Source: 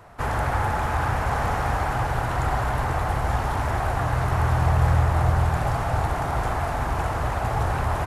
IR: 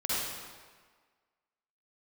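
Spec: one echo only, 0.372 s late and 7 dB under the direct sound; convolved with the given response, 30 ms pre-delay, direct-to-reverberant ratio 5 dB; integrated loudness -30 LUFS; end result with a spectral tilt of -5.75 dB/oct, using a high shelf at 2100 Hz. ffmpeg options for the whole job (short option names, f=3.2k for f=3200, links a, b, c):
-filter_complex "[0:a]highshelf=f=2.1k:g=3.5,aecho=1:1:372:0.447,asplit=2[a][b];[1:a]atrim=start_sample=2205,adelay=30[c];[b][c]afir=irnorm=-1:irlink=0,volume=-13.5dB[d];[a][d]amix=inputs=2:normalize=0,volume=-8dB"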